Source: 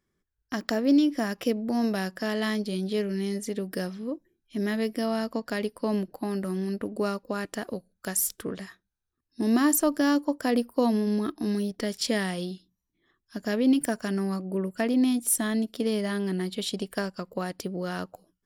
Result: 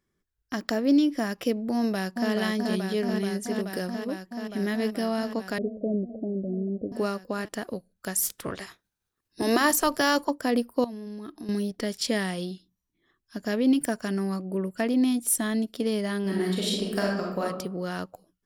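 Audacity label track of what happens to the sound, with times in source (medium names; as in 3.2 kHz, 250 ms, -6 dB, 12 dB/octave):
1.730000	2.320000	echo throw 430 ms, feedback 85%, level -4 dB
5.580000	6.920000	steep low-pass 660 Hz 72 dB/octave
8.220000	10.290000	spectral peaks clipped ceiling under each frame's peak by 16 dB
10.840000	11.490000	compression 8:1, threshold -35 dBFS
16.210000	17.420000	reverb throw, RT60 0.81 s, DRR -2.5 dB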